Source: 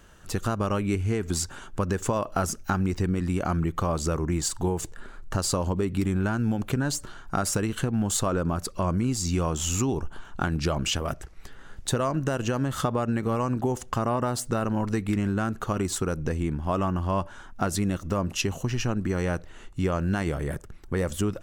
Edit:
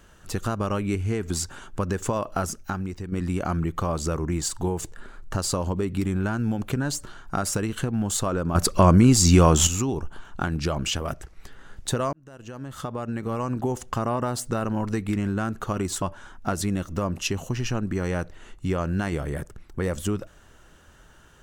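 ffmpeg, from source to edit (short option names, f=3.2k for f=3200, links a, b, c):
-filter_complex "[0:a]asplit=6[a][b][c][d][e][f];[a]atrim=end=3.12,asetpts=PTS-STARTPTS,afade=t=out:st=2.32:d=0.8:silence=0.298538[g];[b]atrim=start=3.12:end=8.552,asetpts=PTS-STARTPTS,afade=t=in:d=0.004:c=hsin:silence=0.298538[h];[c]atrim=start=8.548:end=9.672,asetpts=PTS-STARTPTS,volume=10.5dB[i];[d]atrim=start=9.668:end=12.13,asetpts=PTS-STARTPTS,afade=t=out:st=2.458:d=0.004:c=hsin[j];[e]atrim=start=12.13:end=16.022,asetpts=PTS-STARTPTS,afade=t=in:d=1.55[k];[f]atrim=start=17.158[l];[g][h]concat=n=2:v=0:a=1[m];[m][i]acrossfade=d=0.004:c1=hsin:c2=hsin[n];[j][k]concat=n=2:v=0:a=1[o];[n][o]acrossfade=d=0.004:c1=hsin:c2=hsin[p];[p][l]acrossfade=d=0.004:c1=hsin:c2=hsin"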